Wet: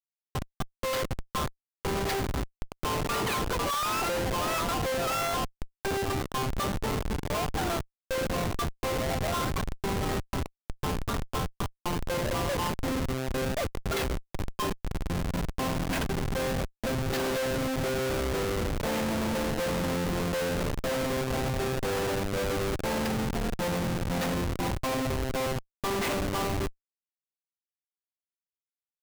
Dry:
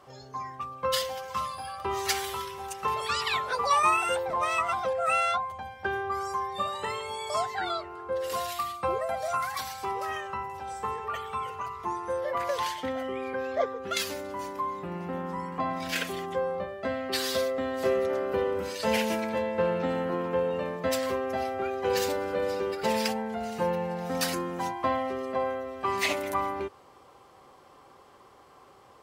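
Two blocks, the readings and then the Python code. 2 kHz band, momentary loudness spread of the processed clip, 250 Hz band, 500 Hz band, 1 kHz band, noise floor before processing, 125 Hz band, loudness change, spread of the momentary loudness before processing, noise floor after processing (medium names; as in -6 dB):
-1.0 dB, 6 LU, +4.0 dB, -2.0 dB, -4.0 dB, -55 dBFS, +10.5 dB, -0.5 dB, 8 LU, under -85 dBFS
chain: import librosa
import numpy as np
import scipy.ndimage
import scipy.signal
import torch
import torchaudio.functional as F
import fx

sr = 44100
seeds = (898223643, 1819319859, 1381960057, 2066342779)

y = scipy.signal.sosfilt(scipy.signal.butter(2, 5400.0, 'lowpass', fs=sr, output='sos'), x)
y = fx.schmitt(y, sr, flips_db=-29.0)
y = y * librosa.db_to_amplitude(2.0)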